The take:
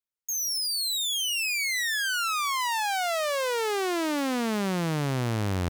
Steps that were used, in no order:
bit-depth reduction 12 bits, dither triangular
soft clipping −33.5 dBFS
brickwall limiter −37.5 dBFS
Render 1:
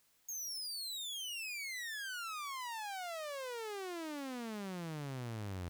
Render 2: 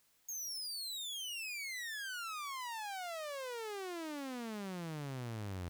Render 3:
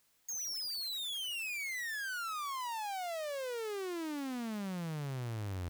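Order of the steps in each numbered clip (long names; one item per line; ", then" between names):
brickwall limiter, then bit-depth reduction, then soft clipping
brickwall limiter, then soft clipping, then bit-depth reduction
soft clipping, then brickwall limiter, then bit-depth reduction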